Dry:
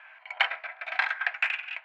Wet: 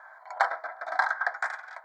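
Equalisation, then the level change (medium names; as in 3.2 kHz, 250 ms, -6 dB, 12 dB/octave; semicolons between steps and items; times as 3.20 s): Butterworth band-stop 2.7 kHz, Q 0.67; +8.0 dB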